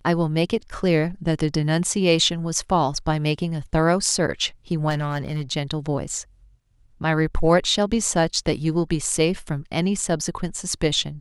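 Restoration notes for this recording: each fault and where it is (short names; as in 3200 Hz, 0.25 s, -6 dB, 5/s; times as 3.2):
4.89–5.42 clipped -19.5 dBFS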